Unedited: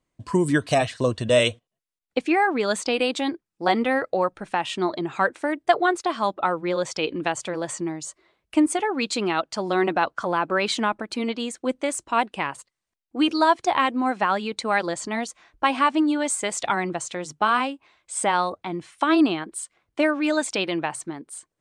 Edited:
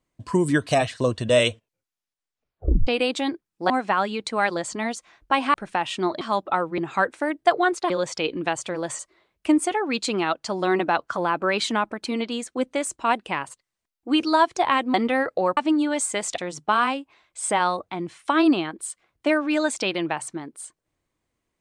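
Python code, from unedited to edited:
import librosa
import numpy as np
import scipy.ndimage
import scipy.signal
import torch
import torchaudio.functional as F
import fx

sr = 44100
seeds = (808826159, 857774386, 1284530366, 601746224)

y = fx.edit(x, sr, fx.tape_stop(start_s=1.5, length_s=1.37),
    fx.swap(start_s=3.7, length_s=0.63, other_s=14.02, other_length_s=1.84),
    fx.move(start_s=6.12, length_s=0.57, to_s=5.0),
    fx.cut(start_s=7.78, length_s=0.29),
    fx.cut(start_s=16.67, length_s=0.44), tone=tone)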